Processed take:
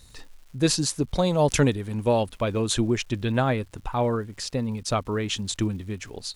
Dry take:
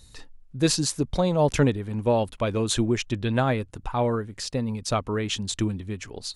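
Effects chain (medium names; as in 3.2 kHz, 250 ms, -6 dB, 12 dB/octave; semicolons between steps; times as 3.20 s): 1.18–2.23 s: treble shelf 3.8 kHz +9 dB; crackle 390 per s -46 dBFS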